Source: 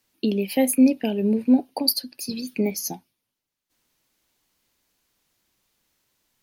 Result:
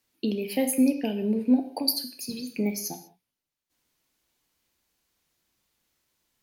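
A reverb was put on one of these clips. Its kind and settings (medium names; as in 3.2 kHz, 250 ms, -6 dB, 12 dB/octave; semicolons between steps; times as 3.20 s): gated-style reverb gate 220 ms falling, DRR 7 dB; trim -4.5 dB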